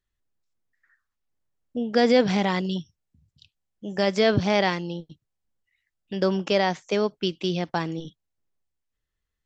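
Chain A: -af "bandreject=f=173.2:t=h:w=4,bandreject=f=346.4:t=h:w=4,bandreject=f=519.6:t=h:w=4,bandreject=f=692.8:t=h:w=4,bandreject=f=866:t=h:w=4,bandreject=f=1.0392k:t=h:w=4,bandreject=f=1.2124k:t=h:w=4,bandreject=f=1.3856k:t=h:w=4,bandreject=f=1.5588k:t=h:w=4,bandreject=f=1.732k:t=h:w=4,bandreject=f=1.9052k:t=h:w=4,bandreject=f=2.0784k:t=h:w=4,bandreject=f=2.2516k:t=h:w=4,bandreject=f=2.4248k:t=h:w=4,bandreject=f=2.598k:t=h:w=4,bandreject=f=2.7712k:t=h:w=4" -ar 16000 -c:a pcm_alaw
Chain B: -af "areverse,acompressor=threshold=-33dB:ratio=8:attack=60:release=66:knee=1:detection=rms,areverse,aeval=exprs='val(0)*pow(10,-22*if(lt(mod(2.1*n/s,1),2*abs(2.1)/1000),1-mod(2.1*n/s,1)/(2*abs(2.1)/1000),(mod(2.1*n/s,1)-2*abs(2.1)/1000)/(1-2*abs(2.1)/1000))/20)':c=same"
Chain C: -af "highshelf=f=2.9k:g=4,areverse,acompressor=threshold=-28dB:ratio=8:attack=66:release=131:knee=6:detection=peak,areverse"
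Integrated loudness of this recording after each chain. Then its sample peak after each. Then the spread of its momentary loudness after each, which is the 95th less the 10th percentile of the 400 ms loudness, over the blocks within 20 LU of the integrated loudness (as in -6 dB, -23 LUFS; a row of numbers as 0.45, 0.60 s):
-24.5, -41.0, -29.5 LUFS; -7.5, -18.0, -11.0 dBFS; 16, 12, 11 LU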